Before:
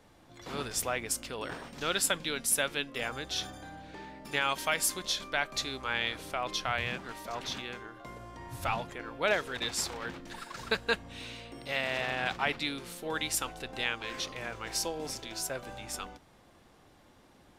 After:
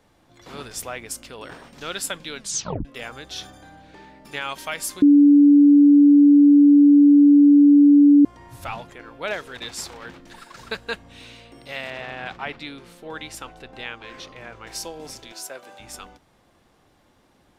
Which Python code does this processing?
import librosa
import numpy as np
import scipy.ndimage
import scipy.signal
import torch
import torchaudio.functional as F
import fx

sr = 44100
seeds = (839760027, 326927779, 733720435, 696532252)

y = fx.high_shelf(x, sr, hz=5000.0, db=-11.0, at=(11.9, 14.67))
y = fx.highpass(y, sr, hz=310.0, slope=12, at=(15.32, 15.8))
y = fx.edit(y, sr, fx.tape_stop(start_s=2.39, length_s=0.46),
    fx.bleep(start_s=5.02, length_s=3.23, hz=288.0, db=-8.5), tone=tone)